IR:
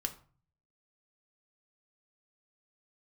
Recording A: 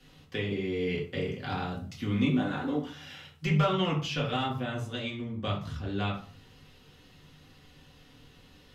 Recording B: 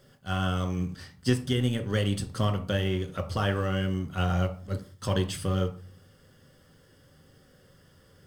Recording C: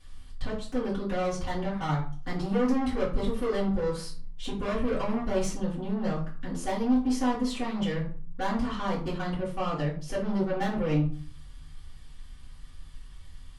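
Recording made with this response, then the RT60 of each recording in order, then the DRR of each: B; 0.40, 0.40, 0.40 seconds; −4.0, 5.5, −11.0 decibels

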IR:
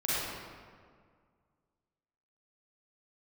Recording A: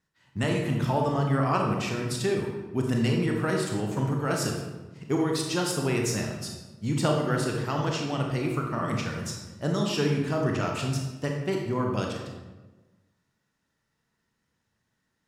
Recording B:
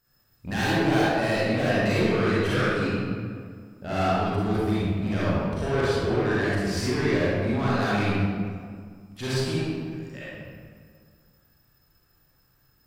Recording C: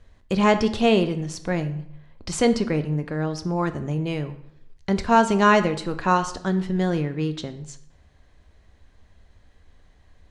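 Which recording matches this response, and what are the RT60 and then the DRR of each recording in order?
B; 1.2, 1.9, 0.75 seconds; 0.5, −10.0, 9.0 decibels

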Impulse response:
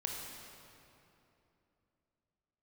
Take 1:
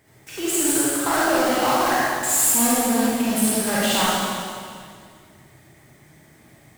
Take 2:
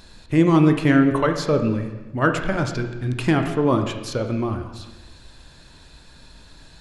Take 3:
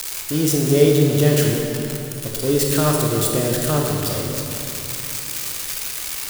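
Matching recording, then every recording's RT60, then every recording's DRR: 3; 2.1, 1.1, 3.0 seconds; −8.0, 5.5, −0.5 decibels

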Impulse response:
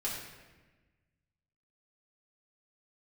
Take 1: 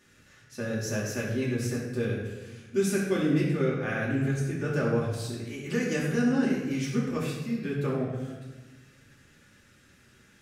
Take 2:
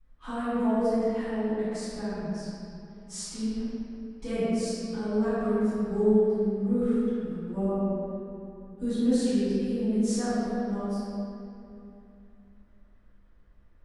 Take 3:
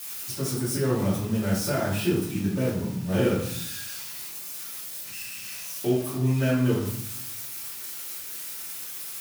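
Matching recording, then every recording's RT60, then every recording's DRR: 1; 1.3, 2.7, 0.70 seconds; −6.5, −19.0, −9.5 decibels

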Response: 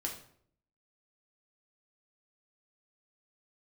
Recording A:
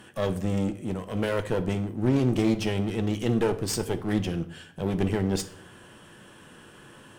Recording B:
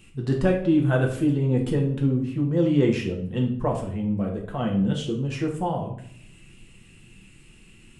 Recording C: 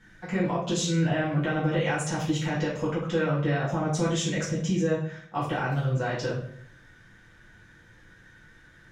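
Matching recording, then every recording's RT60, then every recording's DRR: B; 0.65, 0.60, 0.60 seconds; 9.0, −0.5, −9.0 decibels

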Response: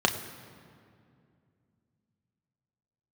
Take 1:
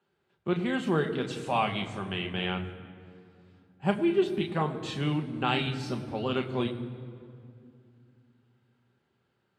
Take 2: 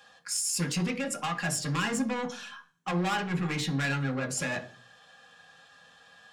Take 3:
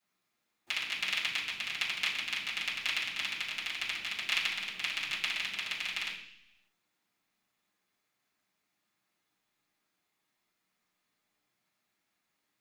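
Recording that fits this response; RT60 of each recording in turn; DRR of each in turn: 1; 2.4, 0.40, 0.70 seconds; 4.0, 3.5, −10.0 decibels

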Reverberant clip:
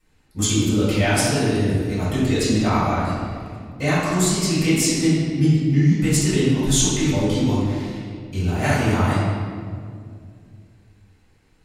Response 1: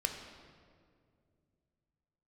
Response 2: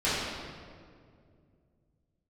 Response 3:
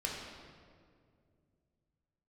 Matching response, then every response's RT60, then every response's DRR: 2; 2.2, 2.2, 2.2 seconds; 4.0, −12.5, −2.5 decibels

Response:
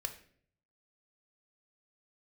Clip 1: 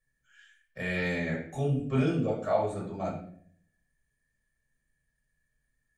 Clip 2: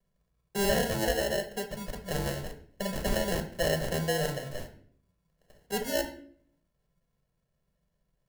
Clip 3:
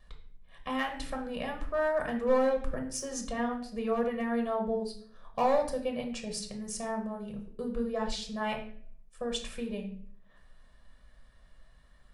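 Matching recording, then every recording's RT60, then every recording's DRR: 2; 0.55, 0.55, 0.55 seconds; −5.0, 6.0, 2.0 decibels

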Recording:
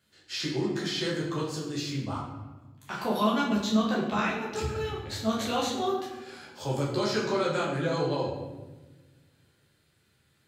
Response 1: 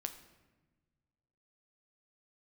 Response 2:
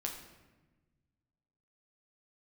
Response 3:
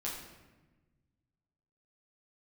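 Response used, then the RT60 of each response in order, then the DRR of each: 3; 1.3, 1.2, 1.2 seconds; 7.0, 0.5, −5.0 decibels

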